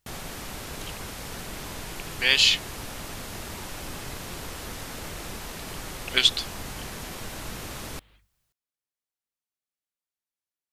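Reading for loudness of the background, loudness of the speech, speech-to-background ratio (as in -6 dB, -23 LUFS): -37.0 LUFS, -21.0 LUFS, 16.0 dB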